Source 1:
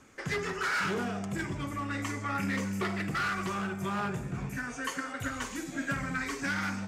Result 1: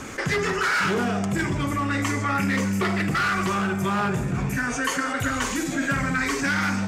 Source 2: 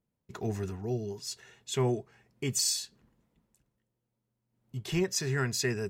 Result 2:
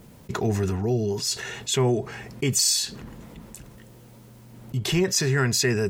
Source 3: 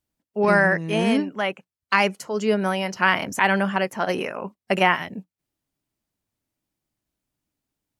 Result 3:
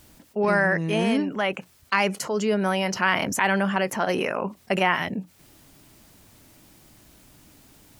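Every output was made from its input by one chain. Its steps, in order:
envelope flattener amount 50%
loudness normalisation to −24 LKFS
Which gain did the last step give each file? +7.0, +5.5, −4.0 decibels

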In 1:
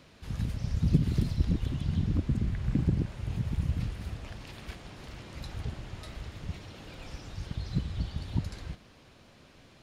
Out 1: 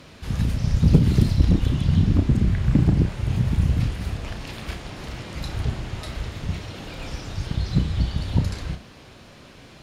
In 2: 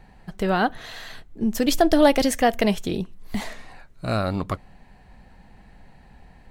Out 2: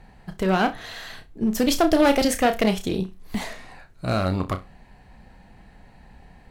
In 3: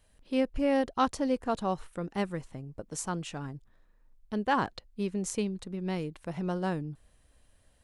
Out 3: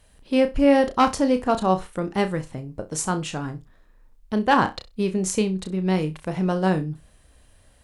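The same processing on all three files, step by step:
asymmetric clip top −20 dBFS
on a send: flutter between parallel walls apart 5.5 metres, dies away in 0.21 s
on the sum: loudness normalisation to −23 LKFS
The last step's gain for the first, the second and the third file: +10.0, +0.5, +9.0 decibels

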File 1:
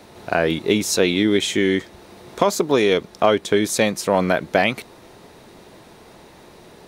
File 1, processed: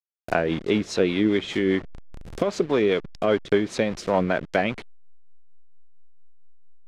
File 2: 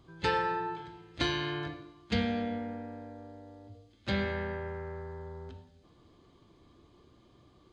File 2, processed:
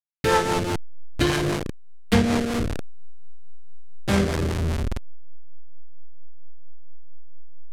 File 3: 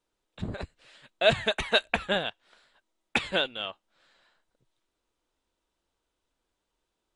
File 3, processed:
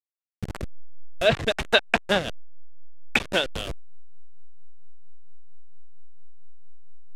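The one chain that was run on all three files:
hold until the input has moved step −28 dBFS
rotating-speaker cabinet horn 5 Hz
treble cut that deepens with the level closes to 2,900 Hz, closed at −18 dBFS
loudness normalisation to −24 LKFS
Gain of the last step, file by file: −2.0, +12.0, +6.0 decibels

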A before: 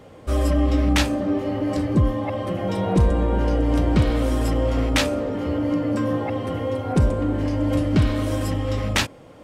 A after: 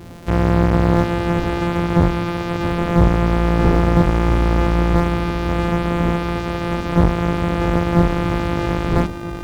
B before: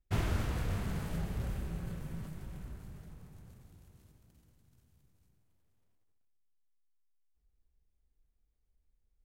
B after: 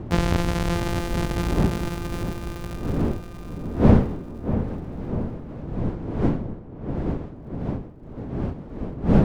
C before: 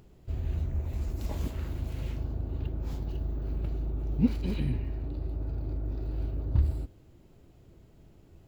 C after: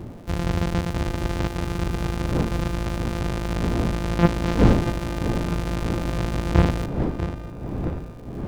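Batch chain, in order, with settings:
samples sorted by size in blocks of 256 samples
wind on the microphone 260 Hz −36 dBFS
on a send: feedback echo with a low-pass in the loop 641 ms, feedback 63%, low-pass 2,000 Hz, level −10 dB
on the sum: slew-rate limiting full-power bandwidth 230 Hz
normalise the peak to −2 dBFS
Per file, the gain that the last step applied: +4.0, +10.5, +7.0 decibels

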